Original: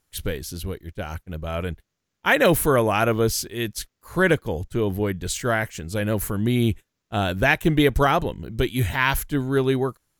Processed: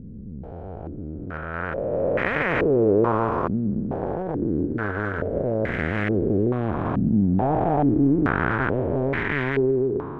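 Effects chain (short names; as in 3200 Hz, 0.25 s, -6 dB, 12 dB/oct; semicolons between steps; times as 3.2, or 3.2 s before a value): time blur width 1.31 s; 4.66–5.33 notch comb 180 Hz; in parallel at -7.5 dB: bit-crush 4-bit; on the sum: stepped low-pass 2.3 Hz 220–2000 Hz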